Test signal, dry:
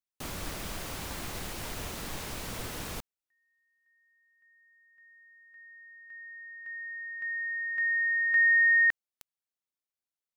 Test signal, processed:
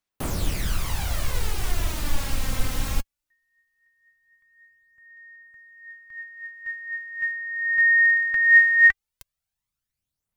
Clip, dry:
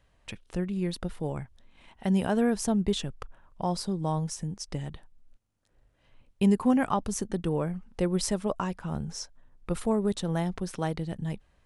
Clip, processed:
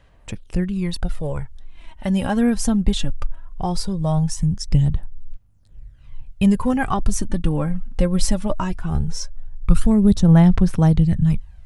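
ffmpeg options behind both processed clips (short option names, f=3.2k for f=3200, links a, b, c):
-af "asubboost=boost=5.5:cutoff=150,aphaser=in_gain=1:out_gain=1:delay=3.8:decay=0.54:speed=0.19:type=sinusoidal,volume=5dB"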